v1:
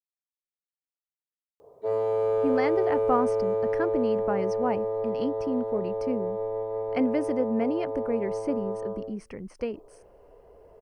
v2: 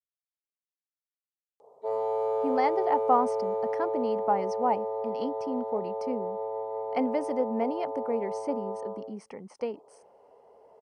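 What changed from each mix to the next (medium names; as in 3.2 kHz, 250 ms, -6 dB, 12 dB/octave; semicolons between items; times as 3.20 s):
background -3.0 dB; master: add cabinet simulation 250–9700 Hz, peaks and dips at 330 Hz -7 dB, 850 Hz +10 dB, 1.6 kHz -8 dB, 2.6 kHz -5 dB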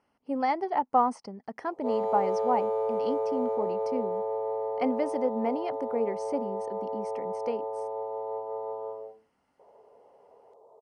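speech: entry -2.15 s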